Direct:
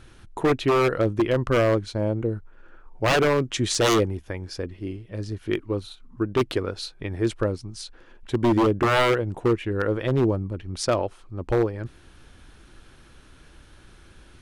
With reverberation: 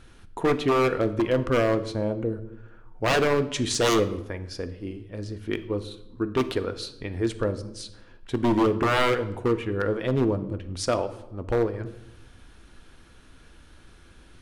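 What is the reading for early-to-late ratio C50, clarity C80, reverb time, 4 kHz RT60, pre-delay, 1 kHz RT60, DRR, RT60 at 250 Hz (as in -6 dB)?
14.0 dB, 16.5 dB, 0.85 s, 0.65 s, 4 ms, 0.80 s, 9.5 dB, 1.2 s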